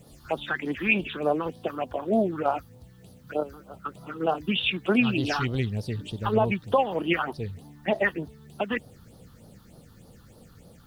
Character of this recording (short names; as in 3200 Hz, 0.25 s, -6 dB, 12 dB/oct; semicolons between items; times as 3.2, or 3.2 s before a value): phasing stages 6, 3.3 Hz, lowest notch 580–2300 Hz; a quantiser's noise floor 12-bit, dither triangular